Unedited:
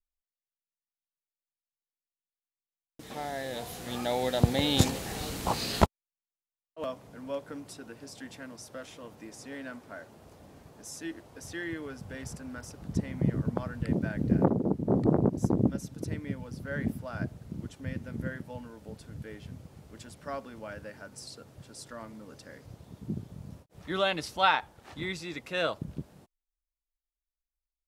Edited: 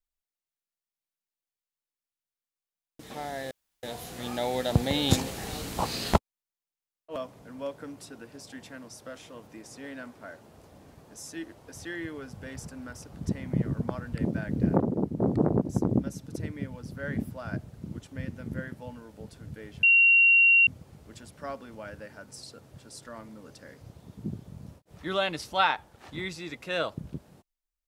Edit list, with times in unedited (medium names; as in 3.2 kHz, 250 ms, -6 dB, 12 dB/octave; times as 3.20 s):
3.51 s: insert room tone 0.32 s
19.51 s: add tone 2.75 kHz -15.5 dBFS 0.84 s